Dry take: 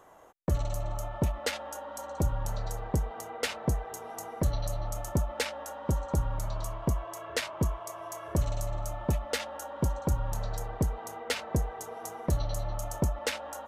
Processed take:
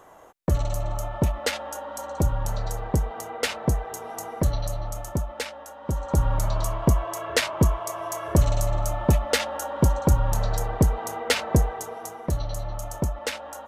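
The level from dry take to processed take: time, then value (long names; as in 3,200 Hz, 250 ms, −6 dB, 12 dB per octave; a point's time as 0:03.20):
0:04.37 +5.5 dB
0:05.76 −2 dB
0:06.28 +9 dB
0:11.61 +9 dB
0:12.18 +2 dB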